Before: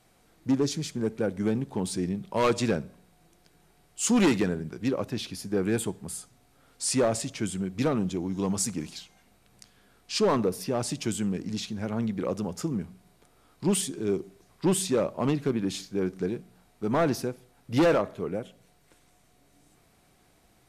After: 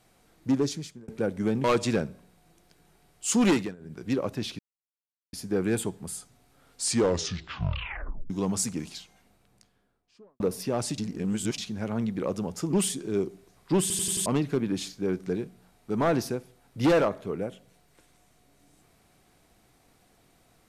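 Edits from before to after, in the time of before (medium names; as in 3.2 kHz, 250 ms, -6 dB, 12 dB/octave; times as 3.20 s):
0.61–1.08 s: fade out
1.64–2.39 s: delete
4.25–4.79 s: dip -22 dB, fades 0.26 s
5.34 s: insert silence 0.74 s
6.83 s: tape stop 1.48 s
8.99–10.41 s: studio fade out
10.99–11.59 s: reverse
12.74–13.66 s: delete
14.74 s: stutter in place 0.09 s, 5 plays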